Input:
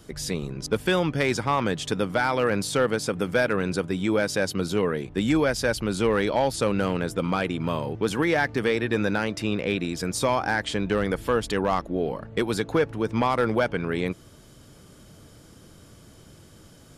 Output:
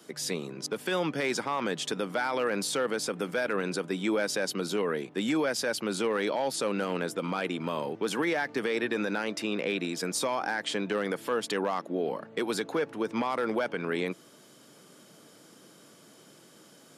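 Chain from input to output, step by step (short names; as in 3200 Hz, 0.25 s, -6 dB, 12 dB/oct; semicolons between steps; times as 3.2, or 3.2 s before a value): Bessel high-pass 260 Hz, order 8; limiter -18.5 dBFS, peak gain reduction 7.5 dB; gain -1 dB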